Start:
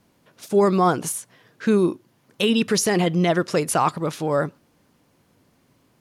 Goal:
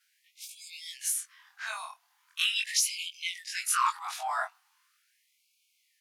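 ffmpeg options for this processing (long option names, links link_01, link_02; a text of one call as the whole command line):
ffmpeg -i in.wav -af "afftfilt=real='re':imag='-im':win_size=2048:overlap=0.75,afftfilt=real='re*gte(b*sr/1024,620*pow(2200/620,0.5+0.5*sin(2*PI*0.4*pts/sr)))':imag='im*gte(b*sr/1024,620*pow(2200/620,0.5+0.5*sin(2*PI*0.4*pts/sr)))':win_size=1024:overlap=0.75,volume=2.5dB" out.wav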